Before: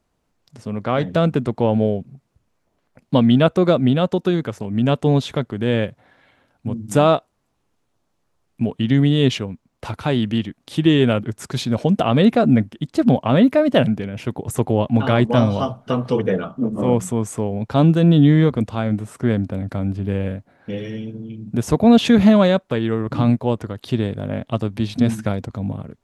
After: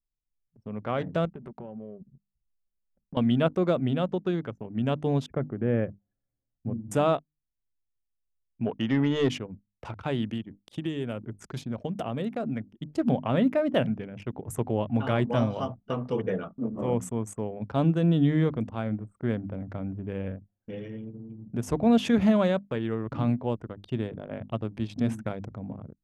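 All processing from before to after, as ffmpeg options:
ffmpeg -i in.wav -filter_complex "[0:a]asettb=1/sr,asplit=3[link_01][link_02][link_03];[link_01]atrim=end=1.254[link_04];[link_02]atrim=start=1.25:end=3.17,asetpts=PTS-STARTPTS,afade=type=in:duration=0.004:curve=qsin,afade=type=out:start_time=1.916:duration=0.004:curve=qsin,aecho=1:1:5.2:0.43,atrim=end_sample=84672,acompressor=threshold=-27dB:ratio=8:attack=3.2:release=140:knee=1:detection=peak[link_05];[link_03]atrim=start=3.166[link_06];[link_04][link_05]acrossfade=duration=0.004:curve1=hsin:curve2=qsin[link_07];[link_07][link_06]acrossfade=duration=0.004:curve1=qsin:curve2=hsin,asettb=1/sr,asplit=3[link_08][link_09][link_10];[link_08]atrim=end=5.264[link_11];[link_09]atrim=start=5.26:end=6.9,asetpts=PTS-STARTPTS,afade=type=in:duration=0.004:curve=qsin,afade=type=out:start_time=1.636:duration=0.004:curve=qsin,lowpass=frequency=2200:width=0.5412,lowpass=frequency=2200:width=1.3066,tiltshelf=frequency=1100:gain=3.5,bandreject=frequency=950:width=7.3[link_12];[link_10]atrim=start=6.896[link_13];[link_11][link_12]acrossfade=duration=0.004:curve1=hsin:curve2=qsin[link_14];[link_14][link_13]acrossfade=duration=0.004:curve1=qsin:curve2=hsin,asettb=1/sr,asplit=3[link_15][link_16][link_17];[link_15]atrim=end=8.664[link_18];[link_16]atrim=start=8.66:end=9.29,asetpts=PTS-STARTPTS,afade=type=in:duration=0.004:curve=qsin,afade=type=out:start_time=0.626:duration=0.004:curve=qsin,lowpass=frequency=4500:width=0.5412,lowpass=frequency=4500:width=1.3066,highshelf=frequency=3300:gain=-8,asplit=2[link_19][link_20];[link_20]highpass=frequency=720:poles=1,volume=17dB,asoftclip=type=tanh:threshold=-4dB[link_21];[link_19][link_21]amix=inputs=2:normalize=0,lowpass=frequency=3300:poles=1,volume=-6dB[link_22];[link_17]atrim=start=9.286[link_23];[link_18][link_22]acrossfade=duration=0.004:curve1=hsin:curve2=qsin[link_24];[link_24][link_23]acrossfade=duration=0.004:curve1=qsin:curve2=hsin,asettb=1/sr,asplit=3[link_25][link_26][link_27];[link_25]atrim=end=10.304[link_28];[link_26]atrim=start=10.3:end=12.85,asetpts=PTS-STARTPTS,afade=type=in:duration=0.004:curve=qsin,afade=type=out:start_time=2.546:duration=0.004:curve=qsin,highshelf=frequency=9100:gain=9,acrossover=split=910|7400[link_29][link_30][link_31];[link_29]acompressor=threshold=-20dB:ratio=4[link_32];[link_30]acompressor=threshold=-33dB:ratio=4[link_33];[link_31]acompressor=threshold=-48dB:ratio=4[link_34];[link_32][link_33][link_34]amix=inputs=3:normalize=0[link_35];[link_27]atrim=start=12.846[link_36];[link_28][link_35]acrossfade=duration=0.004:curve1=hsin:curve2=qsin[link_37];[link_37][link_36]acrossfade=duration=0.004:curve1=qsin:curve2=hsin,bandreject=frequency=50:width_type=h:width=6,bandreject=frequency=100:width_type=h:width=6,bandreject=frequency=150:width_type=h:width=6,bandreject=frequency=200:width_type=h:width=6,bandreject=frequency=250:width_type=h:width=6,bandreject=frequency=300:width_type=h:width=6,anlmdn=10,equalizer=frequency=4000:width=3.6:gain=-6.5,volume=-9dB" out.wav

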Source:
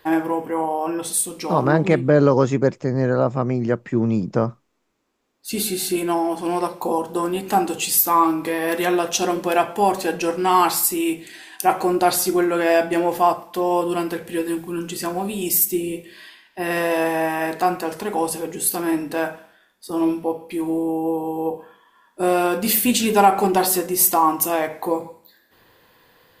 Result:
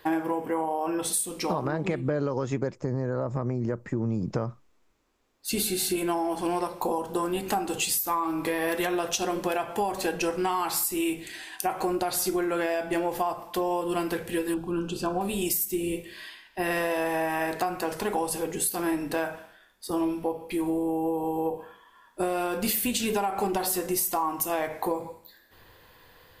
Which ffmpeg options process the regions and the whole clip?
ffmpeg -i in.wav -filter_complex "[0:a]asettb=1/sr,asplit=3[link_01][link_02][link_03];[link_01]atrim=end=2.754[link_04];[link_02]atrim=start=2.75:end=4.25,asetpts=PTS-STARTPTS,afade=type=in:duration=0.004:curve=qsin,afade=type=out:start_time=1.496:duration=0.004:curve=qsin,equalizer=frequency=3000:width_type=o:width=1.3:gain=-10.5,bandreject=frequency=730:width=10,acompressor=threshold=-21dB:ratio=2.5:attack=3.2:release=140:knee=1:detection=peak[link_05];[link_03]atrim=start=4.246[link_06];[link_04][link_05]acrossfade=duration=0.004:curve1=hsin:curve2=qsin[link_07];[link_07][link_06]acrossfade=duration=0.004:curve1=qsin:curve2=hsin,asettb=1/sr,asplit=3[link_08][link_09][link_10];[link_08]atrim=end=14.544[link_11];[link_09]atrim=start=14.54:end=15.21,asetpts=PTS-STARTPTS,afade=type=in:duration=0.004:curve=qsin,afade=type=out:start_time=0.666:duration=0.004:curve=qsin,asuperstop=centerf=2000:order=4:qfactor=2.1,aemphasis=mode=reproduction:type=75fm[link_12];[link_10]atrim=start=15.206[link_13];[link_11][link_12]acrossfade=duration=0.004:curve1=hsin:curve2=qsin[link_14];[link_14][link_13]acrossfade=duration=0.004:curve1=qsin:curve2=hsin,asubboost=boost=3.5:cutoff=93,alimiter=limit=-10dB:level=0:latency=1:release=191,acompressor=threshold=-24dB:ratio=6" out.wav

